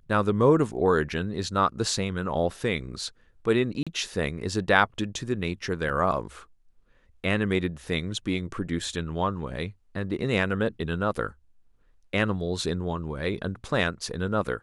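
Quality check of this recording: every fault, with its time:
3.83–3.87 gap 36 ms
5.89–5.9 gap 5.8 ms

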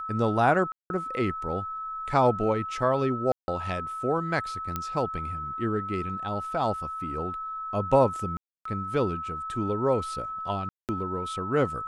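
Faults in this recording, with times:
tone 1300 Hz -32 dBFS
0.72–0.9 gap 0.181 s
3.32–3.48 gap 0.16 s
4.76 pop -15 dBFS
8.37–8.65 gap 0.284 s
10.69–10.89 gap 0.198 s

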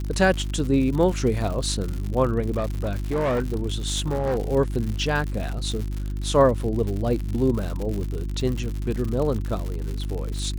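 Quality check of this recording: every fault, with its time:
crackle 120/s -28 dBFS
hum 50 Hz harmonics 7 -28 dBFS
2.5–4.38 clipped -19.5 dBFS

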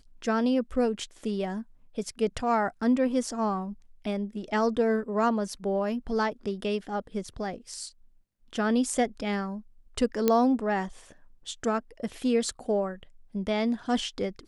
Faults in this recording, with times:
10.28 pop -9 dBFS

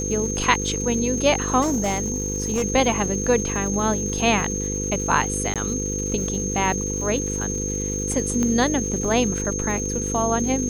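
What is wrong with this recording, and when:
buzz 50 Hz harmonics 10 -28 dBFS
crackle 340/s -33 dBFS
tone 6400 Hz -27 dBFS
1.61–2.64 clipped -18 dBFS
5.54–5.56 gap 17 ms
8.43 pop -12 dBFS

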